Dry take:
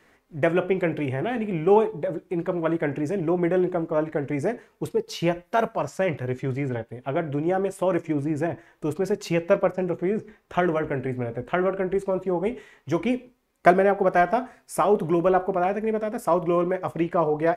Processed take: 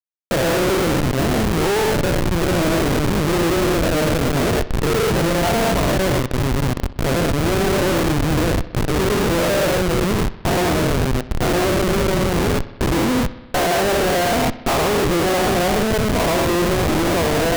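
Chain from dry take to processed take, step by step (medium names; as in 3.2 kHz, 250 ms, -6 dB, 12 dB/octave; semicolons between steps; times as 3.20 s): every event in the spectrogram widened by 240 ms; Schmitt trigger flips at -18 dBFS; bucket-brigade echo 63 ms, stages 2048, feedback 69%, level -18 dB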